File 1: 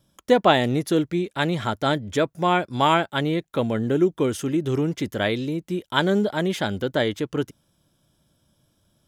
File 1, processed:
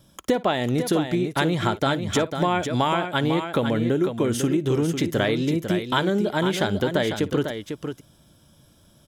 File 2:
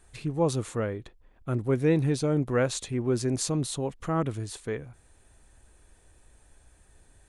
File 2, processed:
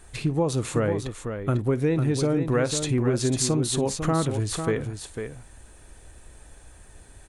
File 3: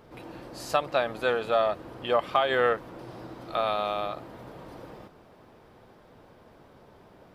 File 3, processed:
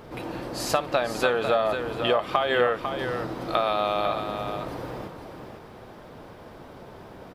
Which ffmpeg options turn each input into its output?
ffmpeg -i in.wav -af "acompressor=threshold=-29dB:ratio=6,aecho=1:1:56|499:0.106|0.422,volume=9dB" out.wav

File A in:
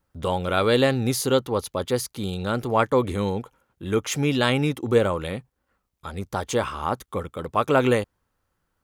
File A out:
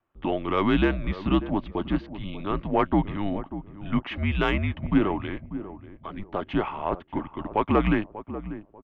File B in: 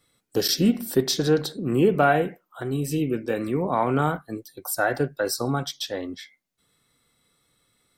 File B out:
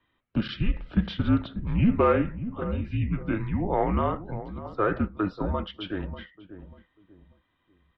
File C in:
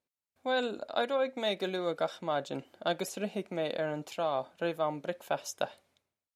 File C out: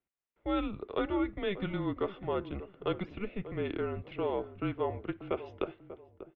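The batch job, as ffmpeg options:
ffmpeg -i in.wav -filter_complex "[0:a]highpass=frequency=210:width_type=q:width=0.5412,highpass=frequency=210:width_type=q:width=1.307,lowpass=frequency=3200:width_type=q:width=0.5176,lowpass=frequency=3200:width_type=q:width=0.7071,lowpass=frequency=3200:width_type=q:width=1.932,afreqshift=-200,acontrast=39,asplit=2[link_01][link_02];[link_02]adelay=591,lowpass=frequency=800:poles=1,volume=-12dB,asplit=2[link_03][link_04];[link_04]adelay=591,lowpass=frequency=800:poles=1,volume=0.33,asplit=2[link_05][link_06];[link_06]adelay=591,lowpass=frequency=800:poles=1,volume=0.33[link_07];[link_01][link_03][link_05][link_07]amix=inputs=4:normalize=0,volume=-6.5dB" out.wav

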